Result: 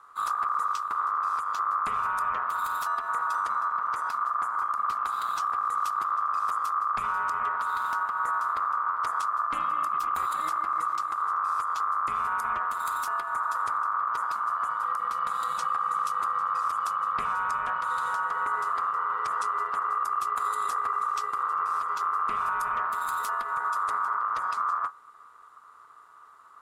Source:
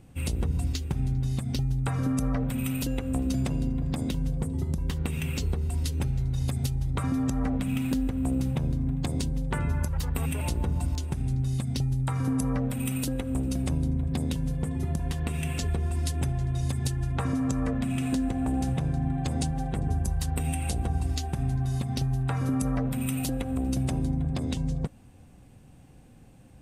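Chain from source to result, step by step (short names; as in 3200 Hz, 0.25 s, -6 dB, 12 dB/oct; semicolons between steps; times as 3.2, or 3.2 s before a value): octaver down 2 oct, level +4 dB; ring modulator 1200 Hz; limiter -17.5 dBFS, peak gain reduction 4.5 dB; gain -2 dB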